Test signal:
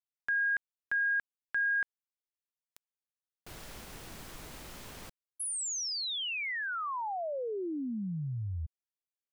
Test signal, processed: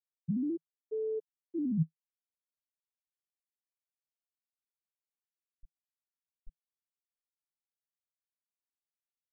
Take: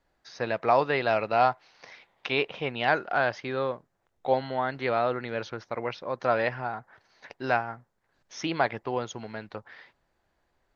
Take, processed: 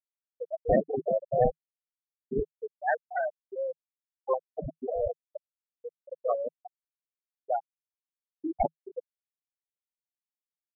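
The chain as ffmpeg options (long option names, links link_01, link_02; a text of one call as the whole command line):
ffmpeg -i in.wav -af "acrusher=samples=25:mix=1:aa=0.000001:lfo=1:lforange=25:lforate=0.24,afftfilt=real='re*gte(hypot(re,im),0.282)':imag='im*gte(hypot(re,im),0.282)':win_size=1024:overlap=0.75,equalizer=frequency=160:width=4.7:gain=5.5" out.wav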